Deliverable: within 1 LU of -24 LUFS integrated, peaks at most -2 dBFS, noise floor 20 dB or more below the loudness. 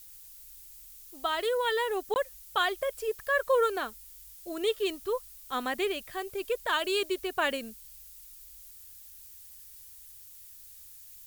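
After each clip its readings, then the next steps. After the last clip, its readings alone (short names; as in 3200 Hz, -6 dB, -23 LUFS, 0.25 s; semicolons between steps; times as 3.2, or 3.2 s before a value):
dropouts 1; longest dropout 19 ms; noise floor -50 dBFS; noise floor target -51 dBFS; loudness -30.5 LUFS; peak -14.0 dBFS; loudness target -24.0 LUFS
-> interpolate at 2.14, 19 ms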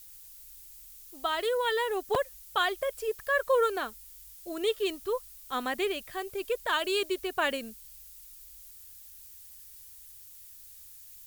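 dropouts 0; noise floor -50 dBFS; noise floor target -51 dBFS
-> noise print and reduce 6 dB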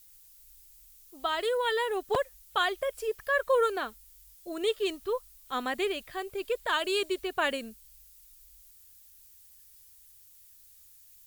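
noise floor -56 dBFS; loudness -30.5 LUFS; peak -14.5 dBFS; loudness target -24.0 LUFS
-> gain +6.5 dB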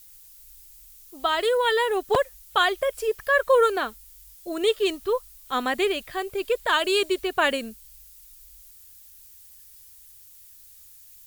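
loudness -24.0 LUFS; peak -8.0 dBFS; noise floor -50 dBFS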